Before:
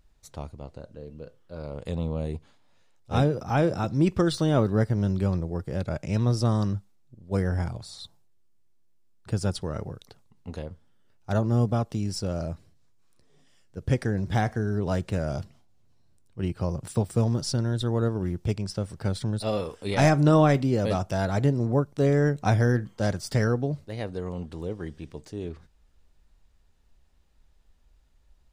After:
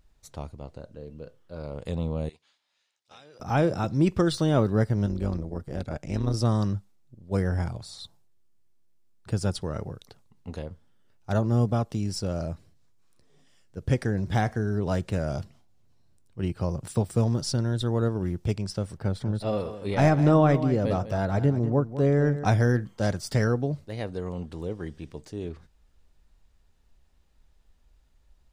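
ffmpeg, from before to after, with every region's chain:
-filter_complex "[0:a]asettb=1/sr,asplit=3[s0][s1][s2];[s0]atrim=end=2.294[s3];[s1]atrim=start=2.29:end=3.4,asetpts=PTS-STARTPTS,afade=t=in:d=0.004:c=qsin,afade=t=out:st=1.106:d=0.004:c=qsin,bandpass=f=4000:t=q:w=0.77,acompressor=threshold=0.00447:ratio=6:attack=3.2:release=140:knee=1:detection=peak[s4];[s2]atrim=start=3.396[s5];[s3][s4]acrossfade=d=0.004:c1=hsin:c2=qsin[s6];[s6][s5]acrossfade=d=0.004:c1=qsin:c2=hsin,asettb=1/sr,asplit=3[s7][s8][s9];[s7]atrim=end=5.064[s10];[s8]atrim=start=5.06:end=6.34,asetpts=PTS-STARTPTS,afade=t=in:d=0.004:c=qsin,afade=t=out:st=1.276:d=0.004:c=qsin,bandreject=f=2500:w=28,tremolo=f=150:d=0.75[s11];[s9]atrim=start=6.336[s12];[s10][s11]acrossfade=d=0.004:c1=hsin:c2=qsin[s13];[s13][s12]acrossfade=d=0.004:c1=qsin:c2=hsin,asettb=1/sr,asplit=3[s14][s15][s16];[s14]atrim=end=18.974[s17];[s15]atrim=start=18.97:end=22.45,asetpts=PTS-STARTPTS,afade=t=in:d=0.004:c=qsin,afade=t=out:st=3.476:d=0.004:c=qsin,equalizer=f=9000:t=o:w=3:g=-9,aecho=1:1:199:0.237,atrim=end_sample=153468[s18];[s16]atrim=start=22.446[s19];[s17][s18]acrossfade=d=0.004:c1=hsin:c2=qsin[s20];[s20][s19]acrossfade=d=0.004:c1=qsin:c2=hsin"

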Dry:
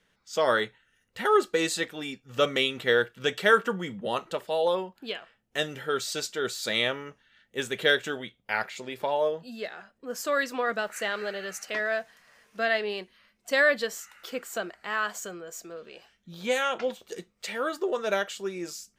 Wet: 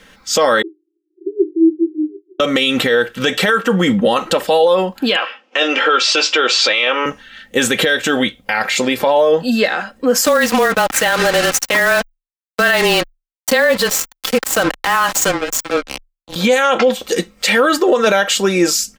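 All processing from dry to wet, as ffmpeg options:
-filter_complex "[0:a]asettb=1/sr,asplit=3[s0][s1][s2];[s0]atrim=end=0.624[s3];[s1]atrim=start=0.62:end=2.4,asetpts=PTS-STARTPTS,afade=t=in:d=0.004:c=qsin,afade=t=out:st=1.776:d=0.004:c=qsin,acompressor=threshold=0.0501:ratio=2:attack=3.2:release=140:knee=1:detection=peak,asuperpass=centerf=350:order=20:qfactor=3.5[s4];[s2]atrim=start=2.396[s5];[s3][s4]acrossfade=d=0.004:c1=hsin:c2=qsin[s6];[s6][s5]acrossfade=d=0.004:c1=qsin:c2=hsin,asettb=1/sr,asplit=3[s7][s8][s9];[s7]atrim=end=5.164[s10];[s8]atrim=start=5.16:end=7.06,asetpts=PTS-STARTPTS,afade=t=in:d=0.004:c=qsin,afade=t=out:st=1.896:d=0.004:c=qsin,acontrast=69,highpass=f=360:w=0.5412,highpass=f=360:w=1.3066,equalizer=f=420:t=q:w=4:g=-5,equalizer=f=690:t=q:w=4:g=-5,equalizer=f=1100:t=q:w=4:g=3,equalizer=f=1800:t=q:w=4:g=-5,equalizer=f=2600:t=q:w=4:g=6,equalizer=f=4000:t=q:w=4:g=-8,lowpass=f=4800:w=0.5412,lowpass=f=4800:w=1.3066,asplit=2[s11][s12];[s12]adelay=16,volume=0.282[s13];[s11][s13]amix=inputs=2:normalize=0,atrim=end_sample=83790[s14];[s9]atrim=start=7.056[s15];[s10][s14]acrossfade=d=0.004:c1=hsin:c2=qsin[s16];[s16][s15]acrossfade=d=0.004:c1=qsin:c2=hsin,asettb=1/sr,asplit=3[s17][s18][s19];[s17]atrim=end=10.254[s20];[s18]atrim=start=10.25:end=16.36,asetpts=PTS-STARTPTS,afade=t=in:d=0.004:c=qsin,afade=t=out:st=6.106:d=0.004:c=qsin,equalizer=f=890:w=6.1:g=7,acrusher=bits=5:mix=0:aa=0.5,afreqshift=-21[s21];[s19]atrim=start=16.356[s22];[s20][s21]acrossfade=d=0.004:c1=hsin:c2=qsin[s23];[s23][s22]acrossfade=d=0.004:c1=qsin:c2=hsin,aecho=1:1:3.8:0.49,acompressor=threshold=0.0447:ratio=4,alimiter=level_in=21.1:limit=0.891:release=50:level=0:latency=1,volume=0.668"

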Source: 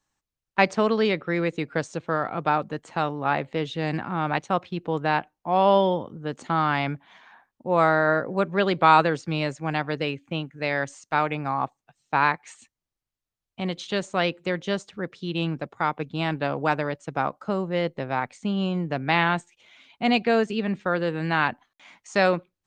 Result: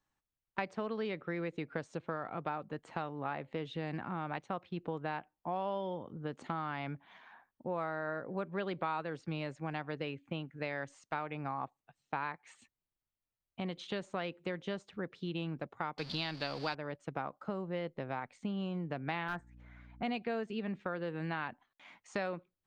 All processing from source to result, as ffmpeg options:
-filter_complex "[0:a]asettb=1/sr,asplit=3[s0][s1][s2];[s0]atrim=end=15.984[s3];[s1]atrim=start=15.98:end=16.75,asetpts=PTS-STARTPTS,afade=t=in:d=0.004:c=qsin,afade=t=out:st=0.766:d=0.004:c=qsin,aeval=exprs='val(0)+0.5*0.0178*sgn(val(0))':c=same,lowpass=f=4600:t=q:w=9.8,highshelf=f=2200:g=11[s4];[s2]atrim=start=16.746[s5];[s3][s4]acrossfade=d=0.004:c1=hsin:c2=qsin[s6];[s6][s5]acrossfade=d=0.004:c1=qsin:c2=hsin,asettb=1/sr,asplit=3[s7][s8][s9];[s7]atrim=end=19.284[s10];[s8]atrim=start=19.28:end=20.03,asetpts=PTS-STARTPTS,afade=t=in:d=0.004:c=qsin,afade=t=out:st=0.746:d=0.004:c=qsin,highshelf=f=2200:t=q:w=3:g=-9.5,aeval=exprs='val(0)+0.00355*(sin(2*PI*60*n/s)+sin(2*PI*2*60*n/s)/2+sin(2*PI*3*60*n/s)/3+sin(2*PI*4*60*n/s)/4+sin(2*PI*5*60*n/s)/5)':c=same,volume=5.62,asoftclip=hard,volume=0.178[s11];[s9]atrim=start=20.026[s12];[s10][s11]acrossfade=d=0.004:c1=hsin:c2=qsin[s13];[s13][s12]acrossfade=d=0.004:c1=qsin:c2=hsin,equalizer=f=6800:t=o:w=1.3:g=-9,acompressor=threshold=0.0316:ratio=4,volume=0.562"

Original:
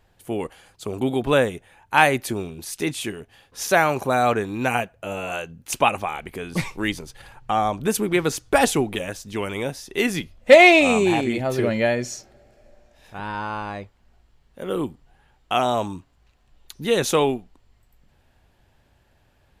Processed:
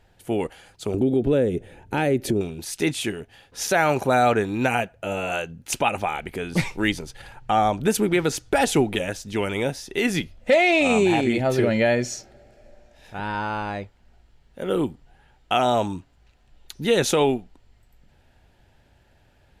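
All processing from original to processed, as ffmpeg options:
-filter_complex "[0:a]asettb=1/sr,asplit=3[s0][s1][s2];[s0]atrim=end=0.944[s3];[s1]atrim=start=0.94:end=2.41,asetpts=PTS-STARTPTS,afade=t=in:d=0.004:c=qsin,afade=t=out:st=1.466:d=0.004:c=qsin,lowshelf=f=620:t=q:w=1.5:g=11.5,acompressor=threshold=0.0501:ratio=2.5:attack=3.2:release=140:knee=1:detection=peak[s4];[s2]atrim=start=2.406[s5];[s3][s4]acrossfade=d=0.004:c1=hsin:c2=qsin[s6];[s6][s5]acrossfade=d=0.004:c1=qsin:c2=hsin,highshelf=f=12000:g=-8.5,bandreject=f=1100:w=6.8,alimiter=limit=0.251:level=0:latency=1:release=100,volume=1.33"

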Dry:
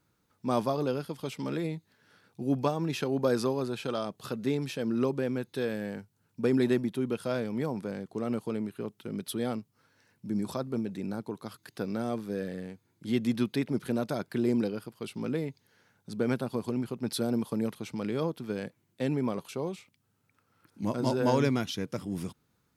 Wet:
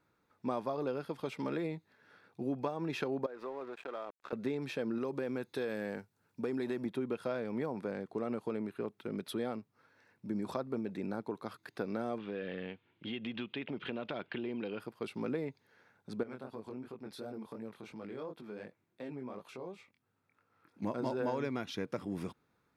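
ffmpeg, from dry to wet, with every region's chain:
-filter_complex "[0:a]asettb=1/sr,asplit=3[s0][s1][s2];[s0]atrim=end=3.264[s3];[s1]atrim=start=3.26:end=4.33,asetpts=PTS-STARTPTS,afade=t=in:d=0.004:c=qsin,afade=t=out:st=1.066:d=0.004:c=qsin,highpass=370,lowpass=2800,aeval=exprs='sgn(val(0))*max(abs(val(0))-0.00473,0)':c=same,acompressor=threshold=0.01:ratio=3:attack=3.2:release=140:knee=1:detection=peak[s4];[s2]atrim=start=4.326[s5];[s3][s4]acrossfade=d=0.004:c1=hsin:c2=qsin[s6];[s6][s5]acrossfade=d=0.004:c1=qsin:c2=hsin,asettb=1/sr,asplit=3[s7][s8][s9];[s7]atrim=end=4.984[s10];[s8]atrim=start=4.98:end=6.86,asetpts=PTS-STARTPTS,afade=t=in:d=0.004:c=qsin,afade=t=out:st=1.876:d=0.004:c=qsin,bass=f=250:g=-1,treble=f=4000:g=6,acompressor=threshold=0.0355:ratio=3:attack=3.2:release=140:knee=1:detection=peak[s11];[s9]atrim=start=6.856[s12];[s10][s11]acrossfade=d=0.004:c1=hsin:c2=qsin[s13];[s13][s12]acrossfade=d=0.004:c1=qsin:c2=hsin,asettb=1/sr,asplit=3[s14][s15][s16];[s14]atrim=end=12.184[s17];[s15]atrim=start=12.18:end=14.8,asetpts=PTS-STARTPTS,afade=t=in:d=0.004:c=qsin,afade=t=out:st=2.616:d=0.004:c=qsin,lowpass=f=3000:t=q:w=9,acompressor=threshold=0.0224:ratio=6:attack=3.2:release=140:knee=1:detection=peak[s18];[s16]atrim=start=14.796[s19];[s17][s18]acrossfade=d=0.004:c1=hsin:c2=qsin[s20];[s20][s19]acrossfade=d=0.004:c1=qsin:c2=hsin,asettb=1/sr,asplit=3[s21][s22][s23];[s21]atrim=end=16.234[s24];[s22]atrim=start=16.23:end=20.82,asetpts=PTS-STARTPTS,afade=t=in:d=0.004:c=qsin,afade=t=out:st=4.586:d=0.004:c=qsin,flanger=delay=18:depth=6.2:speed=2.8,acompressor=threshold=0.00501:ratio=2:attack=3.2:release=140:knee=1:detection=peak[s25];[s23]atrim=start=20.816[s26];[s24][s25]acrossfade=d=0.004:c1=hsin:c2=qsin[s27];[s27][s26]acrossfade=d=0.004:c1=qsin:c2=hsin,bass=f=250:g=-8,treble=f=4000:g=-13,bandreject=f=3000:w=12,acompressor=threshold=0.0224:ratio=6,volume=1.19"

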